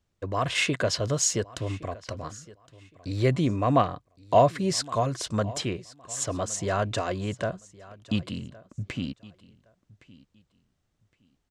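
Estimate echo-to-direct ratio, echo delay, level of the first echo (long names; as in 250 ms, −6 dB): −21.0 dB, 1,115 ms, −21.0 dB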